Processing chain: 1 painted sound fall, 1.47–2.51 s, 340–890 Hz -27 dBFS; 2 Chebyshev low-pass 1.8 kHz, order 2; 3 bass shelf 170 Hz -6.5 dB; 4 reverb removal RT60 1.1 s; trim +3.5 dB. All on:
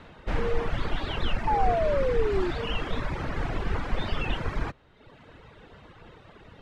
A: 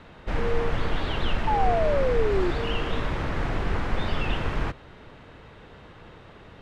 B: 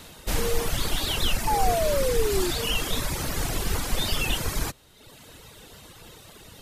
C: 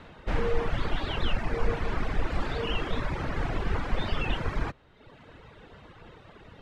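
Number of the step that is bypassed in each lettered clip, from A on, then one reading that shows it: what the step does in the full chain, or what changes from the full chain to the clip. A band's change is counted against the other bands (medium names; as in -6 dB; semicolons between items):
4, loudness change +2.0 LU; 2, 4 kHz band +9.0 dB; 1, 1 kHz band -5.5 dB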